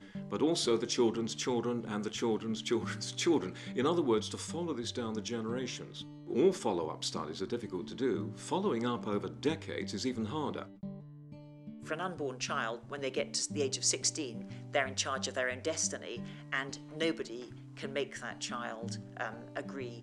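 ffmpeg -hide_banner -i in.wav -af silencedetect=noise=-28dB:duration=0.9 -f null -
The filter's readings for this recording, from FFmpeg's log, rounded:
silence_start: 10.62
silence_end: 11.91 | silence_duration: 1.29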